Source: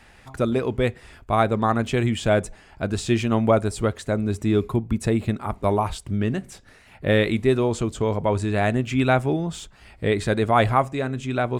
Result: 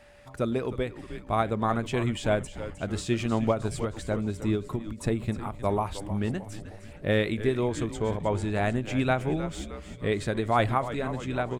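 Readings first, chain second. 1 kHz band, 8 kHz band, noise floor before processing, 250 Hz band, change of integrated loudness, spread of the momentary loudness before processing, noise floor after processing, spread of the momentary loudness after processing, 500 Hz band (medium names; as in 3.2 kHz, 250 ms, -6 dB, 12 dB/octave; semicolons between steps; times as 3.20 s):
-6.0 dB, -5.5 dB, -51 dBFS, -6.0 dB, -6.0 dB, 8 LU, -46 dBFS, 9 LU, -6.0 dB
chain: whistle 580 Hz -49 dBFS; frequency-shifting echo 309 ms, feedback 59%, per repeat -100 Hz, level -12.5 dB; endings held to a fixed fall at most 170 dB/s; trim -5.5 dB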